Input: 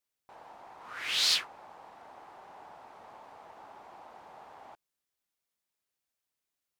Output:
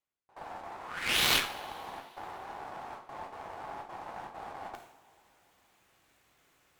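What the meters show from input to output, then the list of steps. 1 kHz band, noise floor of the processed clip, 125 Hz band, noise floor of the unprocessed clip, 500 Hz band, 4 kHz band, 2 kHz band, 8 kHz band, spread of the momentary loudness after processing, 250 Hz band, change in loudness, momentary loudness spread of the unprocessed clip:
+7.5 dB, −69 dBFS, +15.5 dB, below −85 dBFS, +8.5 dB, −1.0 dB, +5.5 dB, +0.5 dB, 19 LU, +12.5 dB, −6.0 dB, 21 LU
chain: running median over 9 samples
noise gate with hold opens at −42 dBFS
reversed playback
upward compression, threshold −39 dBFS
reversed playback
coupled-rooms reverb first 0.51 s, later 3.1 s, from −18 dB, DRR 2 dB
harmonic generator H 3 −14 dB, 4 −19 dB, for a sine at −21.5 dBFS
level +9 dB

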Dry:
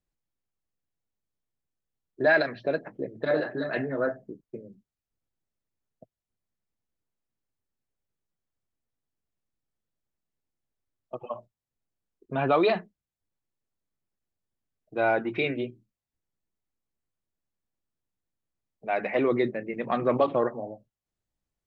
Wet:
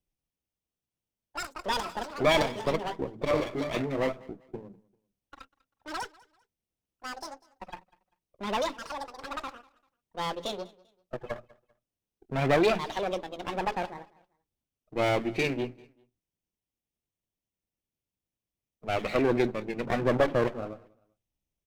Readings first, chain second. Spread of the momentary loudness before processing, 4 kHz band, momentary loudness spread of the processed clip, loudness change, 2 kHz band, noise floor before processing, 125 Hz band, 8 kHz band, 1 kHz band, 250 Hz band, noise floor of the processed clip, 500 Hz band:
18 LU, +7.0 dB, 18 LU, −3.0 dB, −3.0 dB, below −85 dBFS, +4.0 dB, can't be measured, +1.0 dB, 0.0 dB, below −85 dBFS, −1.0 dB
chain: lower of the sound and its delayed copy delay 0.34 ms
delay with pitch and tempo change per echo 186 ms, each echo +7 semitones, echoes 2, each echo −6 dB
repeating echo 196 ms, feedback 30%, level −23 dB

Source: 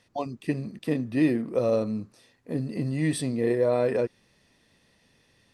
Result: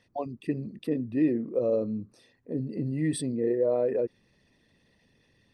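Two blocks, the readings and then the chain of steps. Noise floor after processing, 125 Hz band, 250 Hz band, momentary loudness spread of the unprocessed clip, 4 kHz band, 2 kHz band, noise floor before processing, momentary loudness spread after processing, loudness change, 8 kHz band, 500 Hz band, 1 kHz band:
−68 dBFS, −4.0 dB, −2.0 dB, 9 LU, −5.0 dB, −9.0 dB, −66 dBFS, 9 LU, −2.0 dB, −2.0 dB, −1.5 dB, −5.0 dB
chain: spectral envelope exaggerated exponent 1.5
level −2 dB

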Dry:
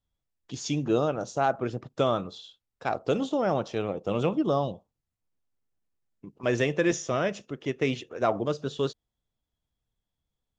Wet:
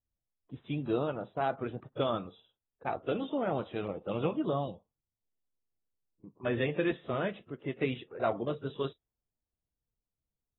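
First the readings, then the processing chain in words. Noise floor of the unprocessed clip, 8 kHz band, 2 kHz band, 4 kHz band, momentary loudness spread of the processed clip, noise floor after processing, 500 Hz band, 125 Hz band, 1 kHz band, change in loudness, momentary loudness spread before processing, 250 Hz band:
below −85 dBFS, can't be measured, −6.0 dB, −7.0 dB, 9 LU, below −85 dBFS, −6.0 dB, −5.5 dB, −6.0 dB, −6.0 dB, 9 LU, −5.5 dB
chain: spectral magnitudes quantised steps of 15 dB
low-pass that shuts in the quiet parts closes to 780 Hz, open at −22 dBFS
level −6 dB
AAC 16 kbit/s 24,000 Hz

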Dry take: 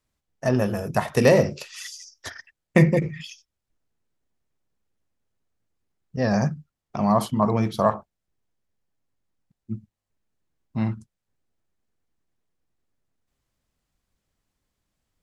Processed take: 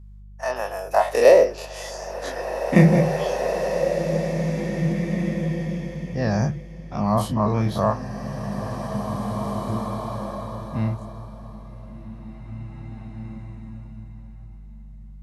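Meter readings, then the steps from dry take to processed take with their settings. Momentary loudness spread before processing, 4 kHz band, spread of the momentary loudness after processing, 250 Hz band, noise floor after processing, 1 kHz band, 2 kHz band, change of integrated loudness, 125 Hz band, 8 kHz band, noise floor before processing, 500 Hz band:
20 LU, +1.5 dB, 23 LU, +2.0 dB, −41 dBFS, +3.0 dB, +1.5 dB, −0.5 dB, +3.5 dB, +1.5 dB, −83 dBFS, +4.5 dB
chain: every bin's largest magnitude spread in time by 60 ms
high-pass filter sweep 910 Hz → 89 Hz, 0:00.44–0:03.95
hum with harmonics 50 Hz, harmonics 4, −38 dBFS −9 dB per octave
slow-attack reverb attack 2,420 ms, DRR 4 dB
level −5 dB

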